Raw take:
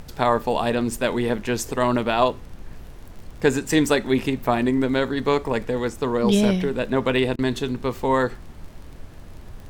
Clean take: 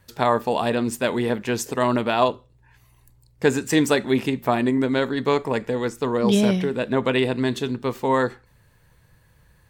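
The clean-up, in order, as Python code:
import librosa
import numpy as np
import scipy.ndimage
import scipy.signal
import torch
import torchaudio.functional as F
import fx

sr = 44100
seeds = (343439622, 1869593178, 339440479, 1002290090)

y = fx.fix_declick_ar(x, sr, threshold=6.5)
y = fx.fix_interpolate(y, sr, at_s=(7.36,), length_ms=26.0)
y = fx.noise_reduce(y, sr, print_start_s=8.69, print_end_s=9.19, reduce_db=18.0)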